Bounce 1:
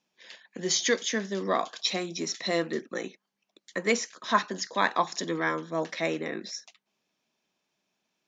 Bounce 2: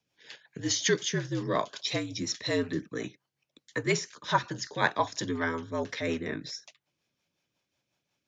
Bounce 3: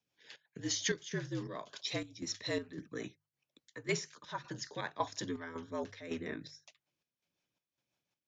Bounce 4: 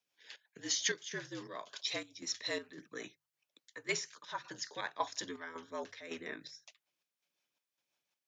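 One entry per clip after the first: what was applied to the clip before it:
rotary cabinet horn 5.5 Hz; frequency shift -63 Hz; trim +1 dB
square tremolo 1.8 Hz, depth 65%, duty 65%; hum notches 50/100/150 Hz; trim -6.5 dB
high-pass 720 Hz 6 dB/octave; trim +2 dB

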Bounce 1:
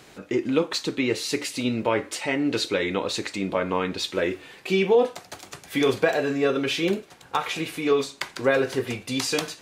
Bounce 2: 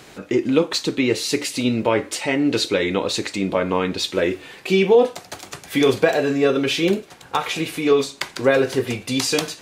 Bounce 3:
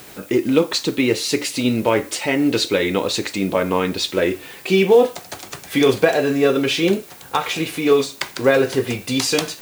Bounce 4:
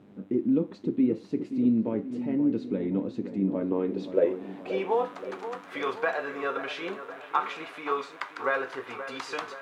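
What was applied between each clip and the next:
dynamic bell 1.4 kHz, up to -3 dB, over -38 dBFS, Q 0.74; trim +5.5 dB
added noise blue -46 dBFS; in parallel at -9.5 dB: short-mantissa float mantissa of 2-bit; on the sum: trim -1 dB
mains buzz 100 Hz, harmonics 40, -44 dBFS -1 dB/octave; band-pass sweep 220 Hz -> 1.2 kHz, 3.38–5.10 s; feedback echo behind a low-pass 527 ms, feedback 55%, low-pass 2.2 kHz, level -11 dB; trim -2 dB

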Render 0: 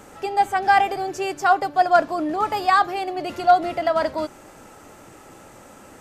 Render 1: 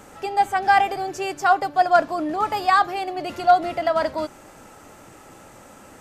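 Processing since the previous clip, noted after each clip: peaking EQ 380 Hz -2 dB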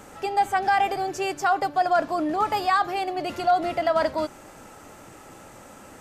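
peak limiter -12.5 dBFS, peak gain reduction 7 dB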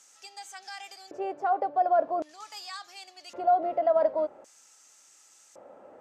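de-hum 75.21 Hz, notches 2; LFO band-pass square 0.45 Hz 570–6200 Hz; trim +1.5 dB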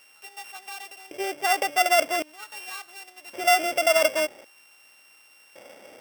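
sorted samples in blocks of 16 samples; trim +3 dB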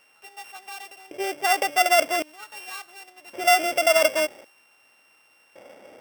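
tape noise reduction on one side only decoder only; trim +1.5 dB

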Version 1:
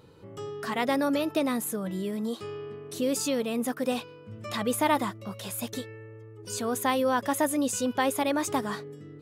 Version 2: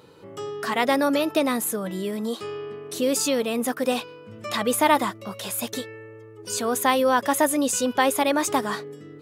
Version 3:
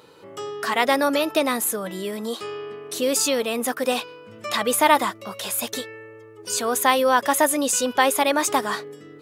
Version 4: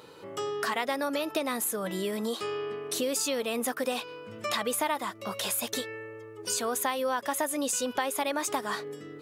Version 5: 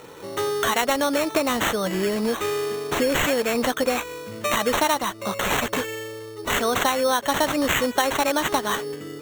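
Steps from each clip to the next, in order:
high-pass 290 Hz 6 dB/octave; trim +6.5 dB
bass shelf 290 Hz -10 dB; trim +3.5 dB
compression 4:1, threshold -28 dBFS, peak gain reduction 15 dB
sample-and-hold 9×; trim +8 dB

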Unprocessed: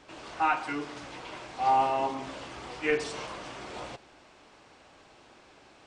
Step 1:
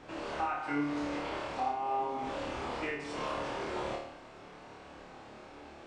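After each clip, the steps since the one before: treble shelf 2.5 kHz -10.5 dB; compression 8:1, threshold -38 dBFS, peak gain reduction 16 dB; on a send: flutter echo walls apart 4.7 m, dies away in 0.6 s; on the sum: trim +4 dB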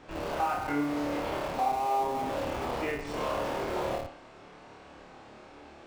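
dynamic bell 620 Hz, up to +5 dB, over -45 dBFS, Q 1.2; in parallel at -7.5 dB: Schmitt trigger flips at -34 dBFS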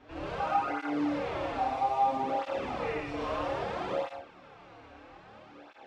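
low-pass 4.5 kHz 12 dB/octave; gated-style reverb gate 170 ms rising, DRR -1 dB; cancelling through-zero flanger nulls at 0.61 Hz, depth 6.1 ms; trim -1.5 dB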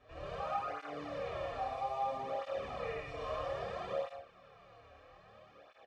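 comb 1.7 ms, depth 71%; trim -8.5 dB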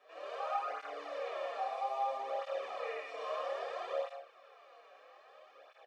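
high-pass 430 Hz 24 dB/octave; trim +1 dB

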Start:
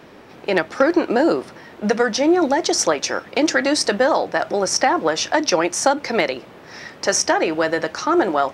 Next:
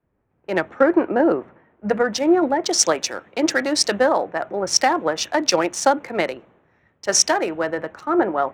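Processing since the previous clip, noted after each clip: local Wiener filter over 9 samples; three bands expanded up and down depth 100%; trim -1.5 dB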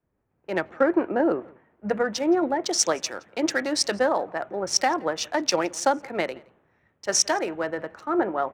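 echo from a far wall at 29 m, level -25 dB; trim -5 dB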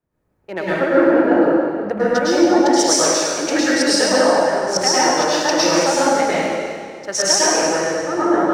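reverberation RT60 2.0 s, pre-delay 98 ms, DRR -9.5 dB; trim -1 dB

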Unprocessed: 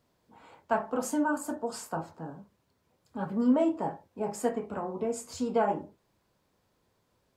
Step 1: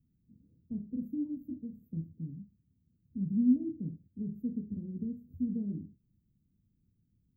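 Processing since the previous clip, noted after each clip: inverse Chebyshev band-stop 730–9800 Hz, stop band 60 dB; trim +4.5 dB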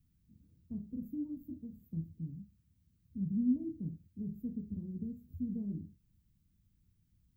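ten-band graphic EQ 125 Hz -6 dB, 250 Hz -9 dB, 500 Hz -10 dB; trim +7 dB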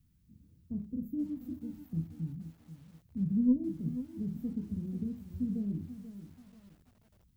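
Chebyshev shaper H 2 -20 dB, 4 -39 dB, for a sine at -21.5 dBFS; bit-crushed delay 485 ms, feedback 35%, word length 10-bit, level -12 dB; trim +4 dB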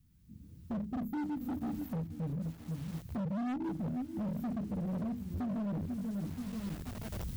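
recorder AGC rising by 15 dB/s; hard clipper -34.5 dBFS, distortion -6 dB; trim +1 dB

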